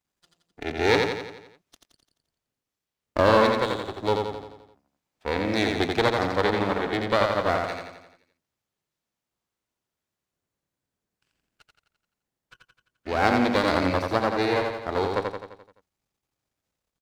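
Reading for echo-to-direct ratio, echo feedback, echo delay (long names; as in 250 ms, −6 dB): −2.5 dB, 54%, 86 ms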